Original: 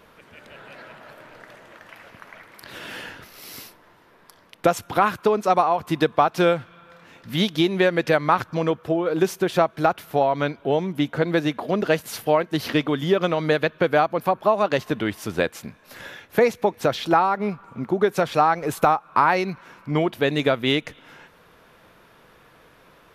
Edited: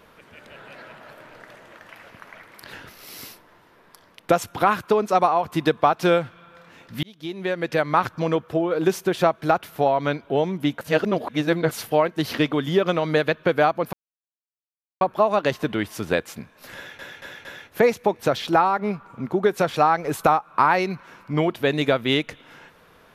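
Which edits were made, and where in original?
0:02.73–0:03.08: remove
0:07.38–0:08.39: fade in
0:11.16–0:12.06: reverse
0:14.28: splice in silence 1.08 s
0:16.03: stutter 0.23 s, 4 plays

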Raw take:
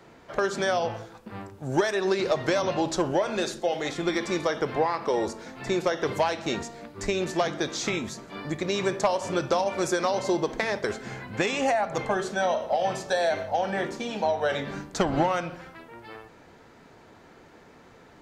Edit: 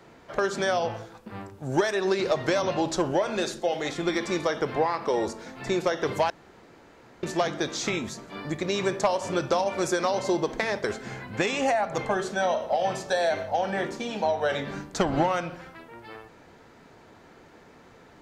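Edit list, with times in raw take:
0:06.30–0:07.23: fill with room tone

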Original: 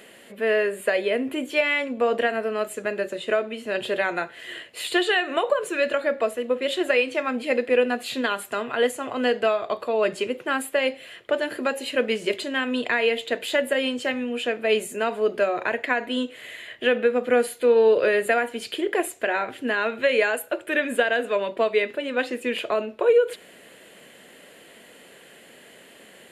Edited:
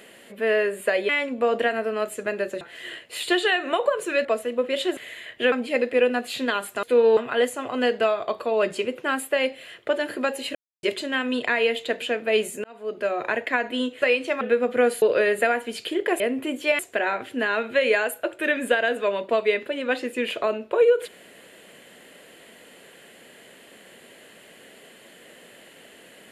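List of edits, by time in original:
0:01.09–0:01.68: move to 0:19.07
0:03.20–0:04.25: remove
0:05.89–0:06.17: remove
0:06.89–0:07.28: swap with 0:16.39–0:16.94
0:11.97–0:12.25: silence
0:13.44–0:14.39: remove
0:15.01–0:15.63: fade in linear
0:17.55–0:17.89: move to 0:08.59

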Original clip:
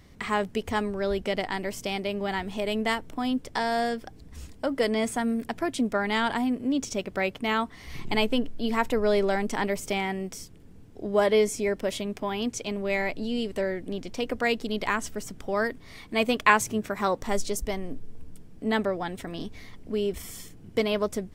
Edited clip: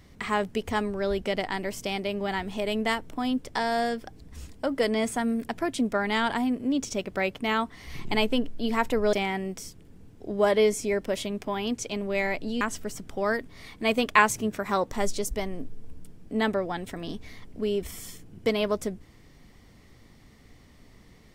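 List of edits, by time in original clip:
0:09.13–0:09.88: remove
0:13.36–0:14.92: remove

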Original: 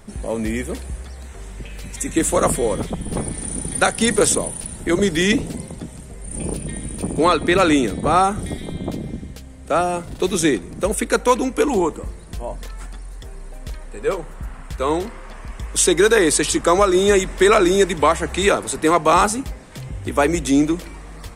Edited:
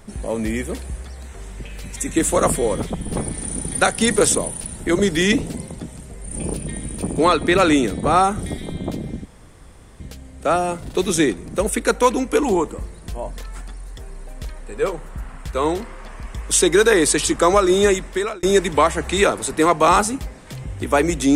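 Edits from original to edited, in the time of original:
0:09.25: splice in room tone 0.75 s
0:17.07–0:17.68: fade out

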